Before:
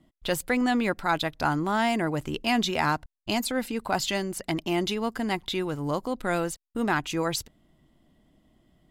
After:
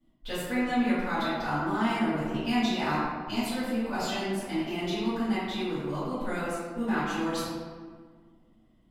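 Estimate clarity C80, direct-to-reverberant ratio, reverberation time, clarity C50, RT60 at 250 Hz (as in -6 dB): 0.0 dB, -15.5 dB, 1.7 s, -2.5 dB, 2.2 s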